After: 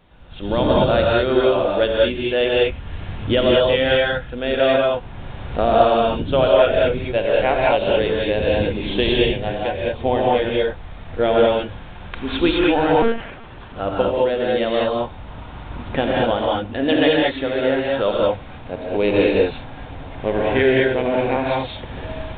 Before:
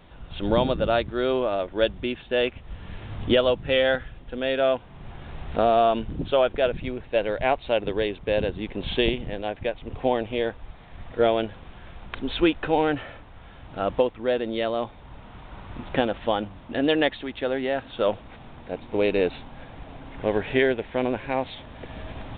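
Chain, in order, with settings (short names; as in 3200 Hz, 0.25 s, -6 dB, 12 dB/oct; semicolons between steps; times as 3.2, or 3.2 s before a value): AGC gain up to 7 dB; non-linear reverb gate 0.24 s rising, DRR -3.5 dB; 13.02–13.8 monotone LPC vocoder at 8 kHz 230 Hz; gain -4 dB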